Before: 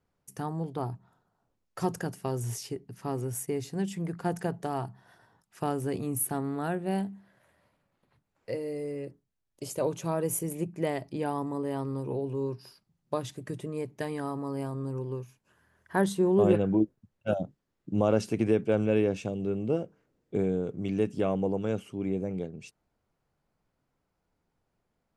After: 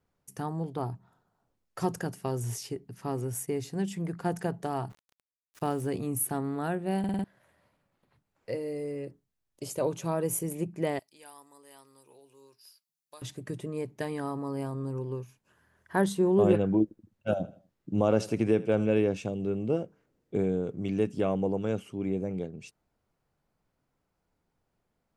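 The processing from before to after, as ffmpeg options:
-filter_complex "[0:a]asplit=3[s0][s1][s2];[s0]afade=t=out:st=4.89:d=0.02[s3];[s1]aeval=exprs='val(0)*gte(abs(val(0)),0.00355)':c=same,afade=t=in:st=4.89:d=0.02,afade=t=out:st=5.88:d=0.02[s4];[s2]afade=t=in:st=5.88:d=0.02[s5];[s3][s4][s5]amix=inputs=3:normalize=0,asettb=1/sr,asplit=3[s6][s7][s8];[s6]atrim=end=10.994[s9];[s7]atrim=start=10.99:end=13.22,asetpts=PTS-STARTPTS,afade=t=in:d=0.004:c=qsin,afade=t=out:st=2.226:d=0.004:c=qsin,aderivative[s10];[s8]atrim=start=13.216[s11];[s9][s10]acrossfade=d=0.004:c1=hsin:c2=qsin[s12];[s12][s11]acrossfade=d=0.004:c1=qsin:c2=hsin,asettb=1/sr,asplit=3[s13][s14][s15];[s13]atrim=end=16.834[s16];[s14]atrim=start=16.83:end=18.98,asetpts=PTS-STARTPTS,afade=t=in:d=0.004:c=qsin,afade=t=out:st=2.146:d=0.004:c=qsin,aecho=1:1:80|160|240:0.126|0.0478|0.0182,atrim=end_sample=94815[s17];[s15]atrim=start=18.976[s18];[s16][s17]acrossfade=d=0.004:c1=hsin:c2=qsin[s19];[s19][s18]acrossfade=d=0.004:c1=qsin:c2=hsin,asplit=6[s20][s21][s22][s23][s24][s25];[s20]atrim=end=7.042[s26];[s21]atrim=start=6.988:end=7.042[s27];[s22]atrim=start=6.988:end=7.042[s28];[s23]atrim=start=6.988:end=7.042[s29];[s24]atrim=start=6.988:end=7.042[s30];[s25]atrim=start=7.238[s31];[s26][s27]acrossfade=d=0.004:c1=hsin:c2=hsin[s32];[s32][s28]acrossfade=d=0.004:c1=hsin:c2=hsin[s33];[s33][s29]acrossfade=d=0.004:c1=hsin:c2=hsin[s34];[s34][s30]acrossfade=d=0.004:c1=hsin:c2=hsin[s35];[s35][s31]acrossfade=d=0.004:c1=hsin:c2=hsin"

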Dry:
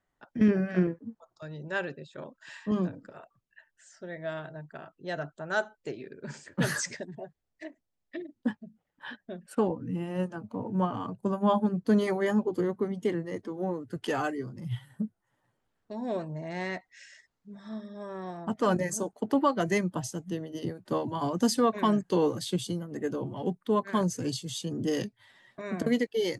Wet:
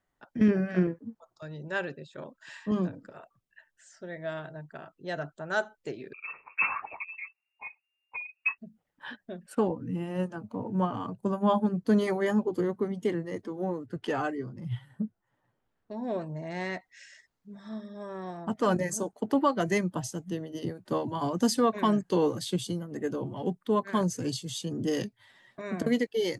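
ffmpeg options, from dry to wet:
-filter_complex "[0:a]asettb=1/sr,asplit=3[s0][s1][s2];[s0]atrim=end=6.134[s3];[s1]atrim=start=6.13:end=8.58,asetpts=PTS-STARTPTS,afade=t=in:d=0.004:c=qsin,afade=t=out:st=2.446:d=0.004:c=qsin,lowpass=f=2400:t=q:w=0.5098,lowpass=f=2400:t=q:w=0.6013,lowpass=f=2400:t=q:w=0.9,lowpass=f=2400:t=q:w=2.563,afreqshift=-2800[s4];[s2]atrim=start=8.576[s5];[s3][s4]acrossfade=d=0.004:c1=hsin:c2=qsin[s6];[s6][s5]acrossfade=d=0.004:c1=qsin:c2=hsin,asettb=1/sr,asplit=3[s7][s8][s9];[s7]atrim=end=13.864[s10];[s8]atrim=start=13.86:end=16.22,asetpts=PTS-STARTPTS,afade=t=in:d=0.004:c=qsin,afade=t=out:st=2.356:d=0.004:c=qsin,lowpass=f=3100:p=1[s11];[s9]atrim=start=16.216[s12];[s10][s11]acrossfade=d=0.004:c1=hsin:c2=qsin[s13];[s13][s12]acrossfade=d=0.004:c1=qsin:c2=hsin"

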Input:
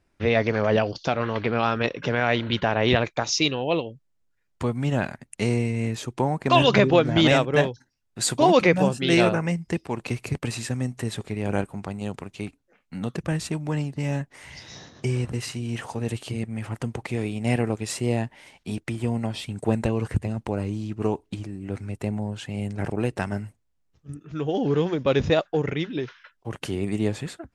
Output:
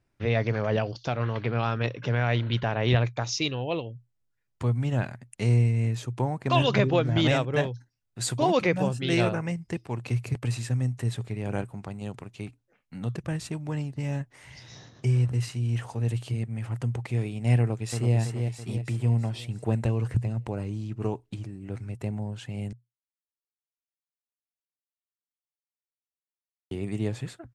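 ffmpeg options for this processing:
-filter_complex "[0:a]asplit=2[s0][s1];[s1]afade=t=in:st=17.59:d=0.01,afade=t=out:st=18.15:d=0.01,aecho=0:1:330|660|990|1320|1650|1980|2310:0.530884|0.291986|0.160593|0.0883259|0.0485792|0.0267186|0.0146952[s2];[s0][s2]amix=inputs=2:normalize=0,asplit=3[s3][s4][s5];[s3]atrim=end=22.73,asetpts=PTS-STARTPTS,afade=t=out:st=22.726:d=0.004:c=hsin[s6];[s4]atrim=start=22.73:end=26.71,asetpts=PTS-STARTPTS,volume=0[s7];[s5]atrim=start=26.71,asetpts=PTS-STARTPTS,afade=t=in:d=0.004:c=hsin[s8];[s6][s7][s8]concat=n=3:v=0:a=1,equalizer=f=120:t=o:w=0.27:g=12.5,volume=0.501"

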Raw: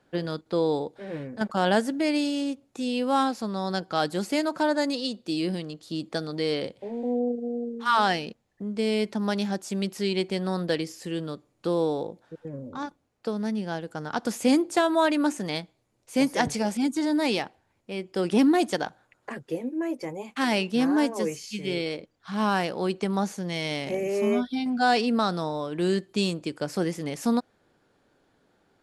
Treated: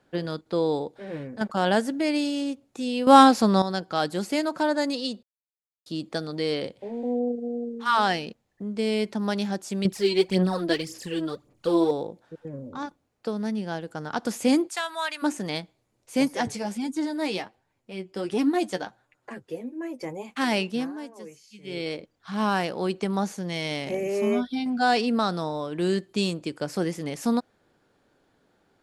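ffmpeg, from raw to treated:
-filter_complex "[0:a]asettb=1/sr,asplit=3[s0][s1][s2];[s0]atrim=end=9.854[s3];[s1]atrim=start=9.85:end=11.91,asetpts=PTS-STARTPTS,afade=t=in:d=0.004:c=qsin,afade=t=out:st=2.056:d=0.004:c=qsin,aphaser=in_gain=1:out_gain=1:delay=3.1:decay=0.67:speed=1.8:type=sinusoidal[s4];[s2]atrim=start=11.906[s5];[s3][s4]acrossfade=d=0.004:c1=hsin:c2=qsin[s6];[s6][s5]acrossfade=d=0.004:c1=qsin:c2=hsin,asplit=3[s7][s8][s9];[s7]afade=t=out:st=14.67:d=0.02[s10];[s8]highpass=1300,afade=t=in:st=14.67:d=0.02,afade=t=out:st=15.22:d=0.02[s11];[s9]afade=t=in:st=15.22:d=0.02[s12];[s10][s11][s12]amix=inputs=3:normalize=0,asettb=1/sr,asplit=3[s13][s14][s15];[s13]atrim=end=16.284[s16];[s14]atrim=start=16.28:end=20,asetpts=PTS-STARTPTS,afade=t=in:d=0.004:c=qsin,afade=t=out:st=3.716:d=0.004:c=qsin,flanger=delay=6.3:depth=4.8:regen=33:speed=1.4:shape=triangular[s17];[s15]atrim=start=19.996[s18];[s16][s17]acrossfade=d=0.004:c1=hsin:c2=qsin[s19];[s19][s18]acrossfade=d=0.004:c1=qsin:c2=hsin,asplit=7[s20][s21][s22][s23][s24][s25][s26];[s20]atrim=end=3.072[s27];[s21]atrim=start=3.068:end=3.622,asetpts=PTS-STARTPTS,volume=3.35[s28];[s22]atrim=start=3.618:end=5.23,asetpts=PTS-STARTPTS,afade=t=out:st=1.608:d=0.004:c=hsin[s29];[s23]atrim=start=5.23:end=5.86,asetpts=PTS-STARTPTS,volume=0[s30];[s24]atrim=start=5.86:end=20.93,asetpts=PTS-STARTPTS,afade=t=in:d=0.004:c=hsin,afade=t=out:st=14.79:d=0.28:silence=0.188365[s31];[s25]atrim=start=20.93:end=21.61,asetpts=PTS-STARTPTS,volume=0.188[s32];[s26]atrim=start=21.61,asetpts=PTS-STARTPTS,afade=t=in:d=0.28:silence=0.188365[s33];[s27][s28]acrossfade=d=0.004:c1=hsin:c2=hsin[s34];[s29][s30][s31][s32][s33]concat=n=5:v=0:a=1[s35];[s34][s35]acrossfade=d=0.004:c1=hsin:c2=hsin"

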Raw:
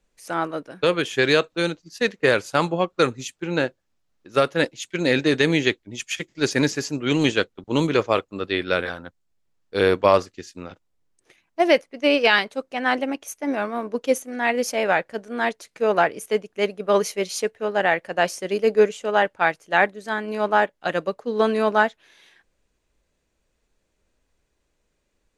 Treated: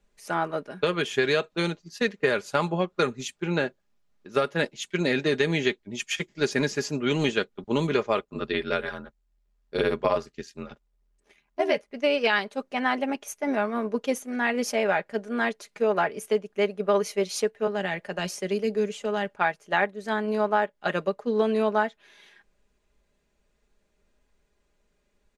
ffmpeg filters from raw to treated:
-filter_complex "[0:a]asettb=1/sr,asplit=3[s0][s1][s2];[s0]atrim=end=8.194[s3];[s1]atrim=start=8.19:end=11.91,asetpts=PTS-STARTPTS,afade=t=in:d=0.004:c=qsin,afade=t=out:st=3.716:d=0.004:c=qsin,aeval=exprs='val(0)*sin(2*PI*40*n/s)':c=same[s4];[s2]atrim=start=11.906[s5];[s3][s4]acrossfade=d=0.004:c1=hsin:c2=qsin[s6];[s6][s5]acrossfade=d=0.004:c1=qsin:c2=hsin,asettb=1/sr,asplit=3[s7][s8][s9];[s7]atrim=end=17.674[s10];[s8]atrim=start=17.67:end=19.29,asetpts=PTS-STARTPTS,afade=t=in:d=0.004:c=qsin,afade=t=out:st=1.616:d=0.004:c=qsin,acrossover=split=270|3000[s11][s12][s13];[s12]acompressor=threshold=0.0398:ratio=6:attack=3.2:release=140:knee=2.83:detection=peak[s14];[s11][s14][s13]amix=inputs=3:normalize=0[s15];[s9]atrim=start=19.286[s16];[s10][s15]acrossfade=d=0.004:c1=hsin:c2=qsin[s17];[s17][s16]acrossfade=d=0.004:c1=qsin:c2=hsin,highshelf=f=4600:g=-5,aecho=1:1:4.9:0.5,acompressor=threshold=0.0794:ratio=2.5"

